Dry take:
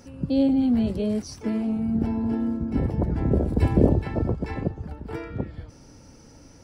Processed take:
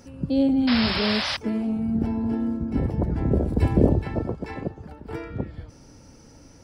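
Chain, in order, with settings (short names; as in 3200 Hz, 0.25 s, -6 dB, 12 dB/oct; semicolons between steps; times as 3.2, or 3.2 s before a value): 0.67–1.37 painted sound noise 520–5400 Hz -27 dBFS; 4.2–5.08 low shelf 150 Hz -9.5 dB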